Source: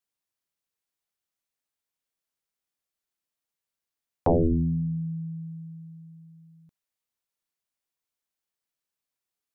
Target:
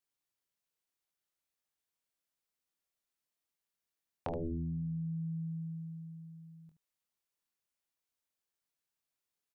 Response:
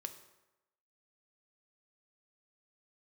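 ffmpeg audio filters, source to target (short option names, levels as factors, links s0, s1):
-af "acompressor=threshold=0.0178:ratio=10,aecho=1:1:24|75:0.422|0.266,volume=0.708"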